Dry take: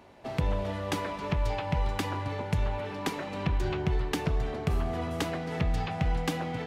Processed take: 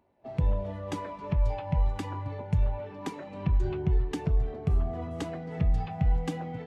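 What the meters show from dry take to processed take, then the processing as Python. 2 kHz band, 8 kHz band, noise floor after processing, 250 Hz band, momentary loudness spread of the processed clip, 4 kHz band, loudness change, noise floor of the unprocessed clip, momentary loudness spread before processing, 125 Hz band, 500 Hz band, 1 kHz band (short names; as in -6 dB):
-9.5 dB, -8.0 dB, -44 dBFS, -1.5 dB, 8 LU, -10.0 dB, +0.5 dB, -38 dBFS, 3 LU, +2.0 dB, -3.0 dB, -4.5 dB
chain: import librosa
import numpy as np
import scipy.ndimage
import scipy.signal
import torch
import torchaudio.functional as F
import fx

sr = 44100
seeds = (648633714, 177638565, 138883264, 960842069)

y = fx.dynamic_eq(x, sr, hz=8100.0, q=0.95, threshold_db=-57.0, ratio=4.0, max_db=6)
y = fx.spectral_expand(y, sr, expansion=1.5)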